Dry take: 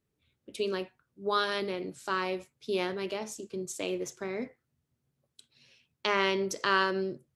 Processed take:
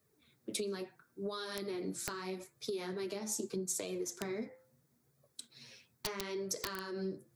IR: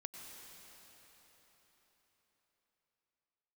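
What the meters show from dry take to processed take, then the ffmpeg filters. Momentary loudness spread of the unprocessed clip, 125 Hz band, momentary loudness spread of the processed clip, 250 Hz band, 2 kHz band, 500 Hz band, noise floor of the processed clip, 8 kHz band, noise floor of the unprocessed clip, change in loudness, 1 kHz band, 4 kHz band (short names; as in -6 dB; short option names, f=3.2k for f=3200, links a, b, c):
12 LU, -4.0 dB, 14 LU, -5.0 dB, -14.5 dB, -7.5 dB, -75 dBFS, +3.5 dB, -82 dBFS, -8.0 dB, -15.0 dB, -8.5 dB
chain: -filter_complex "[0:a]equalizer=f=2.9k:t=o:w=0.43:g=-10.5,flanger=delay=1.6:depth=8.5:regen=13:speed=0.77:shape=sinusoidal,highpass=130,bandreject=f=550:w=18,acompressor=threshold=-44dB:ratio=6,bandreject=f=173:t=h:w=4,bandreject=f=346:t=h:w=4,bandreject=f=519:t=h:w=4,bandreject=f=692:t=h:w=4,bandreject=f=865:t=h:w=4,bandreject=f=1.038k:t=h:w=4,bandreject=f=1.211k:t=h:w=4,bandreject=f=1.384k:t=h:w=4,bandreject=f=1.557k:t=h:w=4,bandreject=f=1.73k:t=h:w=4,aeval=exprs='(mod(44.7*val(0)+1,2)-1)/44.7':c=same,highshelf=f=11k:g=8,acrossover=split=330|3000[a][b][c];[b]acompressor=threshold=-54dB:ratio=6[d];[a][d][c]amix=inputs=3:normalize=0,asoftclip=type=tanh:threshold=-33.5dB,volume=11.5dB"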